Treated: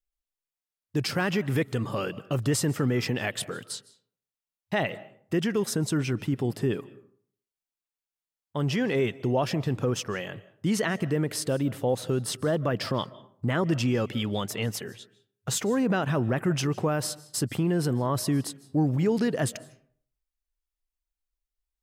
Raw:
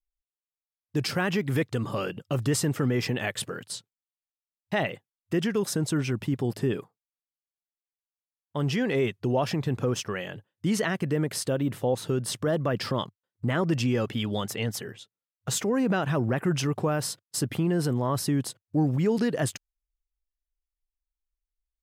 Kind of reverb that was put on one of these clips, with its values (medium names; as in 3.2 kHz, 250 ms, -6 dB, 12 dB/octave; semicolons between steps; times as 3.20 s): algorithmic reverb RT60 0.57 s, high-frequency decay 0.5×, pre-delay 115 ms, DRR 19 dB